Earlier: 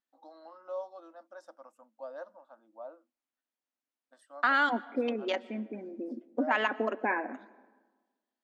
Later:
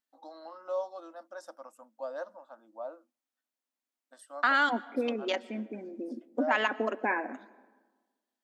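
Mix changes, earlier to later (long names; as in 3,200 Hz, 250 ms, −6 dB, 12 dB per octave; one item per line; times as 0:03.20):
first voice +4.5 dB
master: add high-shelf EQ 5,900 Hz +11 dB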